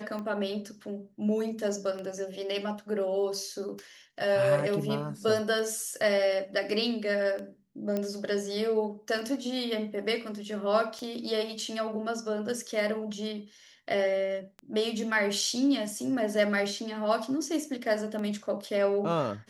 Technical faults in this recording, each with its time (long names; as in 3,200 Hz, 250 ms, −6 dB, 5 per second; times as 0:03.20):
scratch tick 33 1/3 rpm −26 dBFS
0:07.97: click −18 dBFS